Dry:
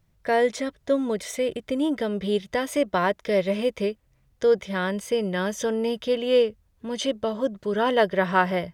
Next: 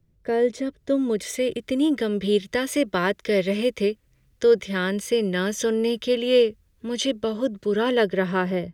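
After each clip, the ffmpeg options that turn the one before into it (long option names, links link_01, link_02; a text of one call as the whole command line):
ffmpeg -i in.wav -filter_complex "[0:a]lowshelf=frequency=570:width_type=q:width=1.5:gain=9,acrossover=split=110|1100[link_01][link_02][link_03];[link_03]dynaudnorm=framelen=300:gausssize=7:maxgain=12dB[link_04];[link_01][link_02][link_04]amix=inputs=3:normalize=0,volume=-7.5dB" out.wav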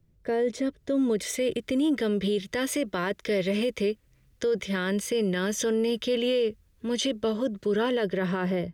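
ffmpeg -i in.wav -af "alimiter=limit=-18.5dB:level=0:latency=1:release=19" out.wav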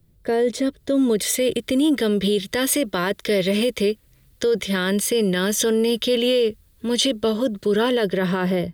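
ffmpeg -i in.wav -af "aexciter=amount=2.3:drive=1.2:freq=3400,volume=6dB" out.wav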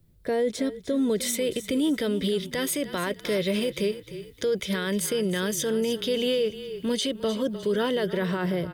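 ffmpeg -i in.wav -filter_complex "[0:a]asplit=4[link_01][link_02][link_03][link_04];[link_02]adelay=304,afreqshift=-30,volume=-14.5dB[link_05];[link_03]adelay=608,afreqshift=-60,volume=-24.4dB[link_06];[link_04]adelay=912,afreqshift=-90,volume=-34.3dB[link_07];[link_01][link_05][link_06][link_07]amix=inputs=4:normalize=0,alimiter=limit=-15dB:level=0:latency=1:release=393,volume=-2.5dB" out.wav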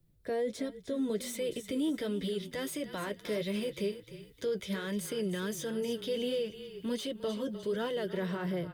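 ffmpeg -i in.wav -filter_complex "[0:a]flanger=delay=5.6:depth=4.8:regen=-45:speed=1.4:shape=sinusoidal,acrossover=split=530|1300[link_01][link_02][link_03];[link_03]asoftclip=type=tanh:threshold=-33.5dB[link_04];[link_01][link_02][link_04]amix=inputs=3:normalize=0,volume=-4dB" out.wav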